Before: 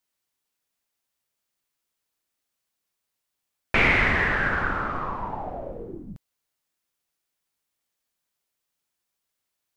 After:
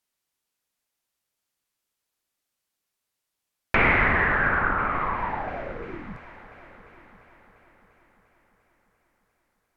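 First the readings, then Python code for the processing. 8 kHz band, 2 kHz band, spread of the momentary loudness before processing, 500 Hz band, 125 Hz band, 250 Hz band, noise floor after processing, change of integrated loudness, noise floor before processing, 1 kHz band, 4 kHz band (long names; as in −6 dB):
can't be measured, +0.5 dB, 19 LU, +1.0 dB, 0.0 dB, +0.5 dB, −83 dBFS, 0.0 dB, −82 dBFS, +3.5 dB, −6.5 dB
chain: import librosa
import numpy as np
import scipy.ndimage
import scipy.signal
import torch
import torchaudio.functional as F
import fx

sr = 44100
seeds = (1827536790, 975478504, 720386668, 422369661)

y = fx.echo_heads(x, sr, ms=347, heads='all three', feedback_pct=46, wet_db=-21.5)
y = fx.dynamic_eq(y, sr, hz=1200.0, q=0.87, threshold_db=-34.0, ratio=4.0, max_db=4)
y = fx.env_lowpass_down(y, sr, base_hz=2100.0, full_db=-20.5)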